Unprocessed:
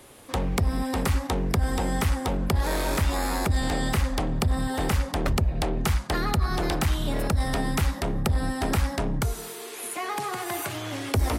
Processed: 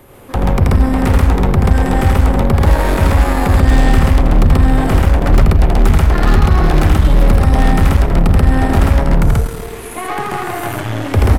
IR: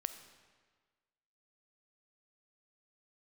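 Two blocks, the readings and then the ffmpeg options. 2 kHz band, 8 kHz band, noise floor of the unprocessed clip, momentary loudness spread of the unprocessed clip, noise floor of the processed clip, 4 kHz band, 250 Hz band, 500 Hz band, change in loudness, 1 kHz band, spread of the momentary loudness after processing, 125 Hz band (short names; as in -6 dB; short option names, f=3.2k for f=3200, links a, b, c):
+10.0 dB, +3.0 dB, -39 dBFS, 5 LU, -27 dBFS, +5.0 dB, +13.0 dB, +11.5 dB, +13.5 dB, +11.0 dB, 9 LU, +15.0 dB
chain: -filter_complex "[0:a]aecho=1:1:81.63|134.1:0.708|1,aeval=exprs='val(0)+0.00251*sin(2*PI*12000*n/s)':c=same,asplit=2[a][b];[1:a]atrim=start_sample=2205,lowpass=2.6k,lowshelf=f=200:g=8.5[c];[b][c]afir=irnorm=-1:irlink=0,volume=5dB[d];[a][d]amix=inputs=2:normalize=0,aeval=exprs='0.841*(cos(1*acos(clip(val(0)/0.841,-1,1)))-cos(1*PI/2))+0.075*(cos(8*acos(clip(val(0)/0.841,-1,1)))-cos(8*PI/2))':c=same,volume=-1.5dB"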